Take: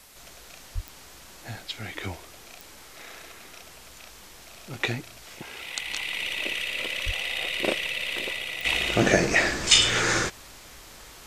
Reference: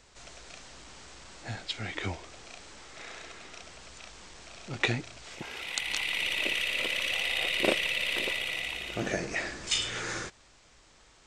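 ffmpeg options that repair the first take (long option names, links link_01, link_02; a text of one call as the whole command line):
ffmpeg -i in.wav -filter_complex "[0:a]adeclick=threshold=4,asplit=3[link_01][link_02][link_03];[link_01]afade=type=out:start_time=0.74:duration=0.02[link_04];[link_02]highpass=frequency=140:width=0.5412,highpass=frequency=140:width=1.3066,afade=type=in:start_time=0.74:duration=0.02,afade=type=out:start_time=0.86:duration=0.02[link_05];[link_03]afade=type=in:start_time=0.86:duration=0.02[link_06];[link_04][link_05][link_06]amix=inputs=3:normalize=0,asplit=3[link_07][link_08][link_09];[link_07]afade=type=out:start_time=7.05:duration=0.02[link_10];[link_08]highpass=frequency=140:width=0.5412,highpass=frequency=140:width=1.3066,afade=type=in:start_time=7.05:duration=0.02,afade=type=out:start_time=7.17:duration=0.02[link_11];[link_09]afade=type=in:start_time=7.17:duration=0.02[link_12];[link_10][link_11][link_12]amix=inputs=3:normalize=0,afwtdn=0.0028,asetnsamples=nb_out_samples=441:pad=0,asendcmd='8.65 volume volume -11.5dB',volume=0dB" out.wav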